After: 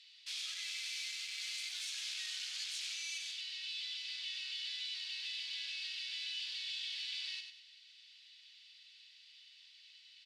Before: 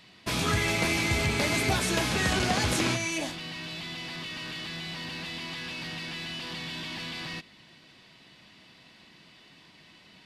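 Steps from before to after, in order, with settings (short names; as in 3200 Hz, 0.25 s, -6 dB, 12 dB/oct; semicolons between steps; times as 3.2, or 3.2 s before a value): in parallel at -2.5 dB: limiter -23.5 dBFS, peak gain reduction 8.5 dB; 0.63–1.87 on the sum: requantised 6-bit, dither none; hard clip -27.5 dBFS, distortion -7 dB; ladder high-pass 2700 Hz, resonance 25%; air absorption 75 m; feedback echo 96 ms, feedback 34%, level -7 dB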